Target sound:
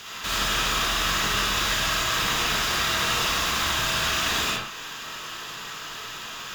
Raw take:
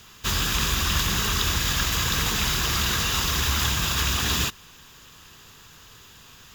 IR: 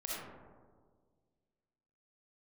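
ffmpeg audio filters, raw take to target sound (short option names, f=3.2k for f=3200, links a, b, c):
-filter_complex "[0:a]alimiter=limit=-17.5dB:level=0:latency=1:release=323,asplit=2[a][b];[b]highpass=f=720:p=1,volume=21dB,asoftclip=type=tanh:threshold=-17.5dB[c];[a][c]amix=inputs=2:normalize=0,lowpass=f=4.4k:p=1,volume=-6dB[d];[1:a]atrim=start_sample=2205,afade=t=out:st=0.25:d=0.01,atrim=end_sample=11466[e];[d][e]afir=irnorm=-1:irlink=0,volume=1dB"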